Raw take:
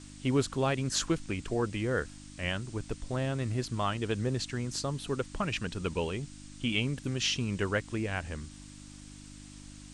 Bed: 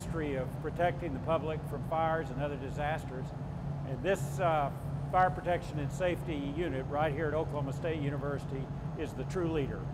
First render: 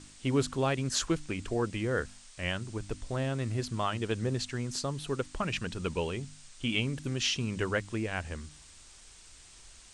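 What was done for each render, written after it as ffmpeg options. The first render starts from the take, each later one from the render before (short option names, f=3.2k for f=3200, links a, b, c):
-af "bandreject=f=50:t=h:w=4,bandreject=f=100:t=h:w=4,bandreject=f=150:t=h:w=4,bandreject=f=200:t=h:w=4,bandreject=f=250:t=h:w=4,bandreject=f=300:t=h:w=4"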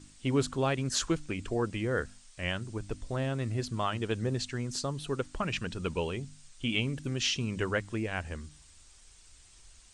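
-af "afftdn=nr=6:nf=-54"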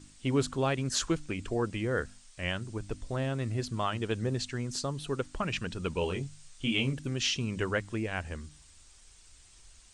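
-filter_complex "[0:a]asettb=1/sr,asplit=3[a][b][c];[a]atrim=end=5.994[d];[b]atrim=start=5.99:end=6.93,asetpts=PTS-STARTPTS,afade=t=in:d=0.004:c=qsin,afade=t=out:st=0.936:d=0.004:c=qsin,asplit=2[e][f];[f]adelay=22,volume=-4.5dB[g];[e][g]amix=inputs=2:normalize=0,atrim=end_sample=41454[h];[c]atrim=start=6.926[i];[d][h]acrossfade=d=0.004:c1=hsin:c2=qsin[j];[j][i]acrossfade=d=0.004:c1=qsin:c2=hsin"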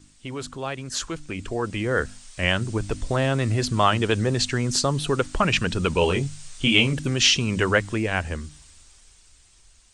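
-filter_complex "[0:a]acrossover=split=530[a][b];[a]alimiter=level_in=5.5dB:limit=-24dB:level=0:latency=1,volume=-5.5dB[c];[c][b]amix=inputs=2:normalize=0,dynaudnorm=f=220:g=17:m=14dB"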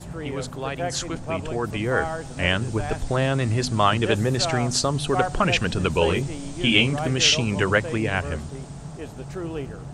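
-filter_complex "[1:a]volume=1.5dB[a];[0:a][a]amix=inputs=2:normalize=0"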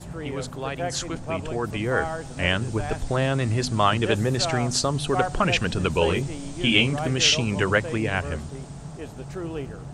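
-af "volume=-1dB"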